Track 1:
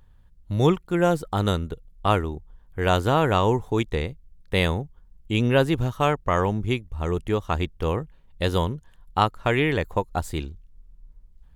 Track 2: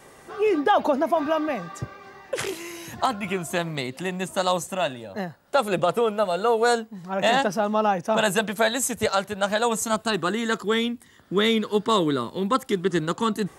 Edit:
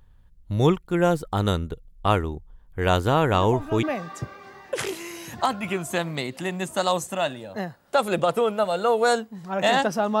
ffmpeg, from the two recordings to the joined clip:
-filter_complex "[1:a]asplit=2[a][b];[0:a]apad=whole_dur=10.2,atrim=end=10.2,atrim=end=3.832[c];[b]atrim=start=1.428:end=7.8[d];[a]atrim=start=0.93:end=1.43,asetpts=PTS-STARTPTS,volume=-11dB,afade=t=in:d=0.004:c=hsin,afade=t=out:st=0.496:d=0.004:c=hsin,adelay=146853S[e];[c][d]acrossfade=d=0.004:c1=hsin:c2=hsin[f];[f][e]amix=inputs=2:normalize=0"

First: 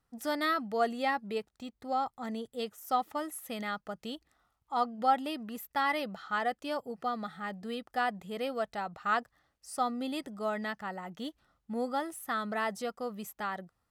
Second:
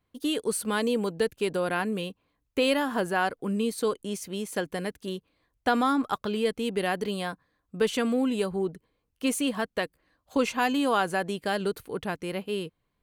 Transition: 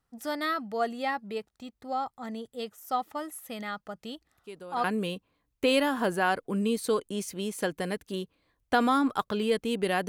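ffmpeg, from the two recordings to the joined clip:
-filter_complex "[1:a]asplit=2[a][b];[0:a]apad=whole_dur=10.08,atrim=end=10.08,atrim=end=4.842[c];[b]atrim=start=1.778:end=7.02[d];[a]atrim=start=1.29:end=1.78,asetpts=PTS-STARTPTS,volume=-16dB,afade=t=in:d=0.004:c=hsin,afade=t=out:st=0.486:d=0.004:c=hsin,adelay=4350[e];[c][d]acrossfade=d=0.004:c1=hsin:c2=hsin[f];[f][e]amix=inputs=2:normalize=0"

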